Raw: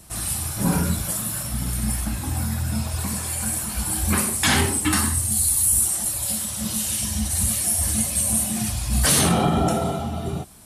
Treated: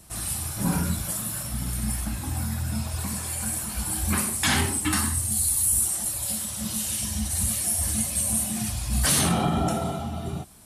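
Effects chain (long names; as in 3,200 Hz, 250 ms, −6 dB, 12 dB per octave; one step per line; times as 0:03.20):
dynamic equaliser 460 Hz, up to −5 dB, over −41 dBFS, Q 2.5
level −3.5 dB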